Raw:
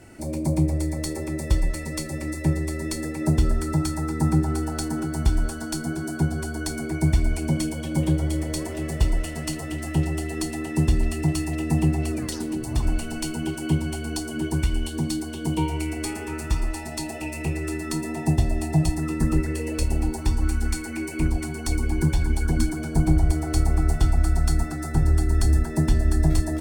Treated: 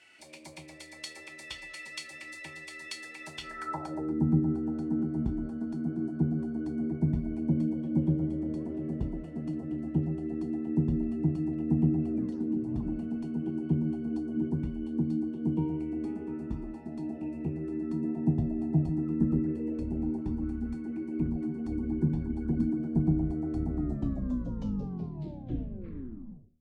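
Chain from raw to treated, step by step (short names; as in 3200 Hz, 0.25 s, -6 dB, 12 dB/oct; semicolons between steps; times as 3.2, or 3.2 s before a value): tape stop at the end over 2.89 s; de-hum 78.81 Hz, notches 9; band-pass sweep 2900 Hz -> 230 Hz, 3.42–4.21; gain +3.5 dB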